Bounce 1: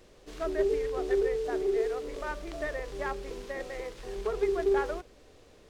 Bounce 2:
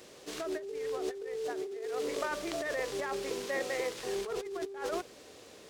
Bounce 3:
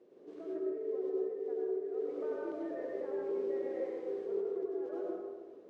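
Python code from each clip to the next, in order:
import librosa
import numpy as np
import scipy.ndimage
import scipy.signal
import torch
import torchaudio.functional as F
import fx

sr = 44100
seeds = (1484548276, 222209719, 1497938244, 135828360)

y1 = scipy.signal.sosfilt(scipy.signal.bessel(2, 180.0, 'highpass', norm='mag', fs=sr, output='sos'), x)
y1 = fx.high_shelf(y1, sr, hz=3500.0, db=7.0)
y1 = fx.over_compress(y1, sr, threshold_db=-36.0, ratio=-1.0)
y2 = fx.bandpass_q(y1, sr, hz=370.0, q=2.6)
y2 = fx.rev_plate(y2, sr, seeds[0], rt60_s=1.4, hf_ratio=0.5, predelay_ms=80, drr_db=-4.0)
y2 = y2 * 10.0 ** (-3.0 / 20.0)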